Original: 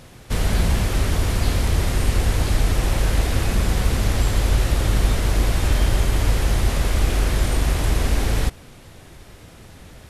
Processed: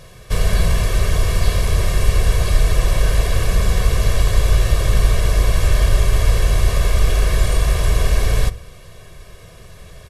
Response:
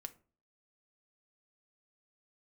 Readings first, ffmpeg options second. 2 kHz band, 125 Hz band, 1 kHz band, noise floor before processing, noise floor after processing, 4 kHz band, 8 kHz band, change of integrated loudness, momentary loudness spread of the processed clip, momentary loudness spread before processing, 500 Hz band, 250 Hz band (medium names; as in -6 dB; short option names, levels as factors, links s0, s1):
+2.0 dB, +3.0 dB, +1.0 dB, -44 dBFS, -41 dBFS, +2.0 dB, +2.0 dB, +3.0 dB, 2 LU, 1 LU, +3.0 dB, -3.0 dB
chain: -filter_complex "[0:a]aecho=1:1:1.8:0.76,asplit=2[s0][s1];[1:a]atrim=start_sample=2205[s2];[s1][s2]afir=irnorm=-1:irlink=0,volume=2.99[s3];[s0][s3]amix=inputs=2:normalize=0,volume=0.376"